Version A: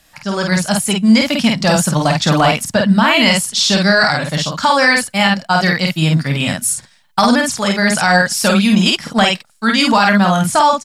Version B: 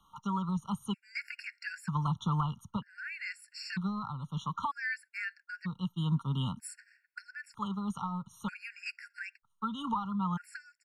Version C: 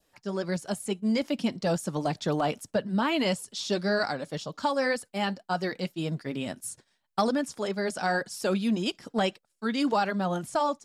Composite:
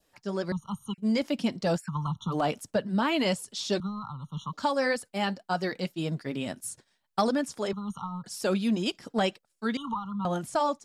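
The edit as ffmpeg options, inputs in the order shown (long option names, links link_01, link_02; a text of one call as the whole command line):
ffmpeg -i take0.wav -i take1.wav -i take2.wav -filter_complex "[1:a]asplit=5[link_01][link_02][link_03][link_04][link_05];[2:a]asplit=6[link_06][link_07][link_08][link_09][link_10][link_11];[link_06]atrim=end=0.522[link_12];[link_01]atrim=start=0.518:end=0.982[link_13];[link_07]atrim=start=0.978:end=1.82[link_14];[link_02]atrim=start=1.76:end=2.36[link_15];[link_08]atrim=start=2.3:end=3.802[link_16];[link_03]atrim=start=3.798:end=4.532[link_17];[link_09]atrim=start=4.528:end=7.732[link_18];[link_04]atrim=start=7.728:end=8.242[link_19];[link_10]atrim=start=8.238:end=9.772[link_20];[link_05]atrim=start=9.768:end=10.252[link_21];[link_11]atrim=start=10.248[link_22];[link_12][link_13]acrossfade=duration=0.004:curve1=hsin:curve2=hsin[link_23];[link_23][link_14]acrossfade=duration=0.004:curve1=hsin:curve2=hsin[link_24];[link_24][link_15]acrossfade=duration=0.06:curve1=tri:curve2=tri[link_25];[link_25][link_16]acrossfade=duration=0.06:curve1=tri:curve2=tri[link_26];[link_26][link_17]acrossfade=duration=0.004:curve1=hsin:curve2=hsin[link_27];[link_27][link_18]acrossfade=duration=0.004:curve1=hsin:curve2=hsin[link_28];[link_28][link_19]acrossfade=duration=0.004:curve1=hsin:curve2=hsin[link_29];[link_29][link_20]acrossfade=duration=0.004:curve1=hsin:curve2=hsin[link_30];[link_30][link_21]acrossfade=duration=0.004:curve1=hsin:curve2=hsin[link_31];[link_31][link_22]acrossfade=duration=0.004:curve1=hsin:curve2=hsin" out.wav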